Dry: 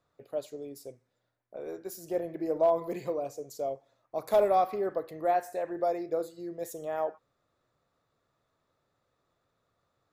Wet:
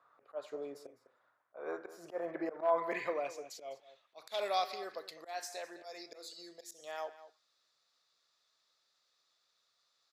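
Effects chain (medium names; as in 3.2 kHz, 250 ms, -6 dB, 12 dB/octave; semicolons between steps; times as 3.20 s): band-pass sweep 1.2 kHz -> 4.8 kHz, 2.24–4.78 s; slow attack 186 ms; echo from a far wall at 35 m, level -15 dB; trim +14.5 dB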